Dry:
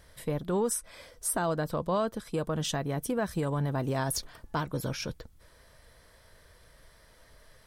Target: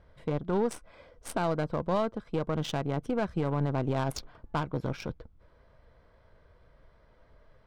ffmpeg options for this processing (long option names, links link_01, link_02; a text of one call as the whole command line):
ffmpeg -i in.wav -af "aeval=exprs='0.126*(cos(1*acos(clip(val(0)/0.126,-1,1)))-cos(1*PI/2))+0.00891*(cos(3*acos(clip(val(0)/0.126,-1,1)))-cos(3*PI/2))+0.0112*(cos(4*acos(clip(val(0)/0.126,-1,1)))-cos(4*PI/2))':channel_layout=same,bandreject=frequency=1800:width=8.9,adynamicsmooth=sensitivity=5:basefreq=1900,volume=1.5dB" out.wav